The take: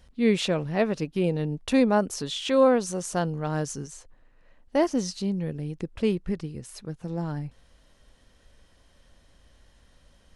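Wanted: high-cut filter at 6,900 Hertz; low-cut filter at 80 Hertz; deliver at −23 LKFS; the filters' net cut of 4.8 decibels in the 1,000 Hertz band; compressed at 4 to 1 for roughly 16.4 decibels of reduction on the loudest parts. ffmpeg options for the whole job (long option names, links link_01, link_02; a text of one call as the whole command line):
ffmpeg -i in.wav -af "highpass=80,lowpass=6900,equalizer=frequency=1000:width_type=o:gain=-6.5,acompressor=threshold=-37dB:ratio=4,volume=16.5dB" out.wav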